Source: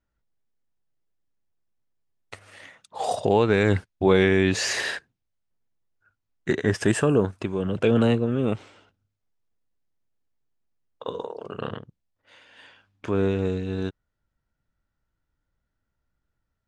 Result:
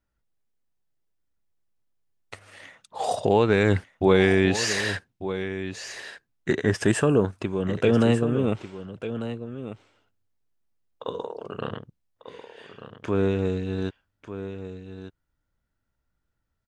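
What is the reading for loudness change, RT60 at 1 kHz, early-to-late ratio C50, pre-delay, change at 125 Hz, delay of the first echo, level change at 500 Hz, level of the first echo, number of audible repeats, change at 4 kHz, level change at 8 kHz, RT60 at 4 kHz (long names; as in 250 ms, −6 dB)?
−1.0 dB, no reverb audible, no reverb audible, no reverb audible, +0.5 dB, 1,195 ms, +0.5 dB, −11.5 dB, 1, +0.5 dB, +0.5 dB, no reverb audible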